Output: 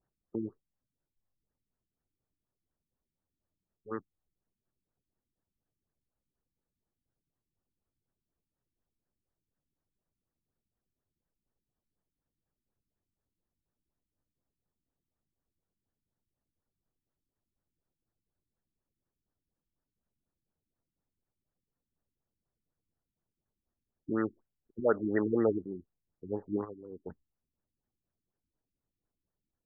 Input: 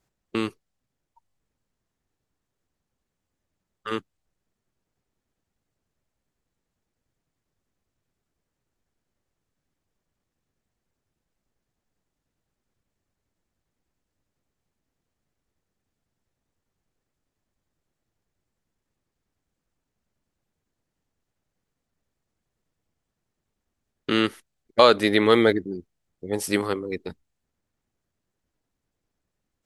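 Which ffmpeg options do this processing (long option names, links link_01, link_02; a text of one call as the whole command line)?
ffmpeg -i in.wav -filter_complex "[0:a]asplit=3[link_01][link_02][link_03];[link_01]afade=type=out:start_time=26.64:duration=0.02[link_04];[link_02]acompressor=threshold=-39dB:ratio=2,afade=type=in:start_time=26.64:duration=0.02,afade=type=out:start_time=27.05:duration=0.02[link_05];[link_03]afade=type=in:start_time=27.05:duration=0.02[link_06];[link_04][link_05][link_06]amix=inputs=3:normalize=0,afftfilt=real='re*lt(b*sr/1024,340*pow(2000/340,0.5+0.5*sin(2*PI*4.1*pts/sr)))':imag='im*lt(b*sr/1024,340*pow(2000/340,0.5+0.5*sin(2*PI*4.1*pts/sr)))':win_size=1024:overlap=0.75,volume=-8dB" out.wav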